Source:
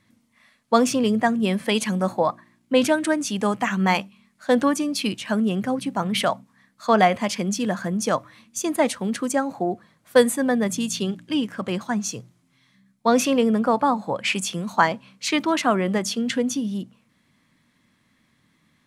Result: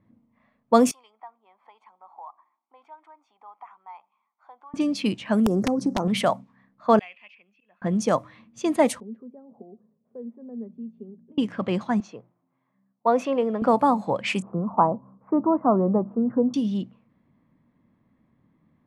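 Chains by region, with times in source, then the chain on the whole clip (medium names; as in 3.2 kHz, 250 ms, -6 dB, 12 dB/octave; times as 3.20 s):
0.91–4.74 s: comb 0.9 ms, depth 61% + compression 3:1, threshold -37 dBFS + ladder high-pass 720 Hz, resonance 55%
5.46–6.08 s: FFT filter 120 Hz 0 dB, 360 Hz +10 dB, 1 kHz +3 dB, 1.5 kHz 0 dB, 2.9 kHz -29 dB, 5.5 kHz +8 dB, 9 kHz +1 dB + compression 16:1, threshold -19 dBFS + integer overflow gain 14.5 dB
6.99–7.82 s: band-pass filter 2.6 kHz, Q 14 + slow attack 120 ms
9.00–11.38 s: compression 2.5:1, threshold -38 dBFS + two resonant band-passes 310 Hz, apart 0.83 oct
12.00–13.62 s: companded quantiser 8-bit + band-pass filter 840 Hz, Q 0.88
14.42–16.54 s: steep low-pass 1.2 kHz 48 dB/octave + tape noise reduction on one side only encoder only
whole clip: peaking EQ 1.5 kHz -5 dB 0.56 oct; level-controlled noise filter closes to 940 Hz, open at -18 dBFS; dynamic bell 3.9 kHz, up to -7 dB, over -40 dBFS, Q 0.78; trim +1.5 dB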